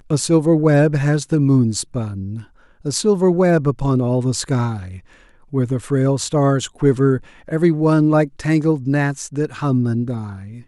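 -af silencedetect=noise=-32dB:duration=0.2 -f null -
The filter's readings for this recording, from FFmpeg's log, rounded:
silence_start: 2.42
silence_end: 2.85 | silence_duration: 0.43
silence_start: 4.99
silence_end: 5.53 | silence_duration: 0.54
silence_start: 7.20
silence_end: 7.48 | silence_duration: 0.28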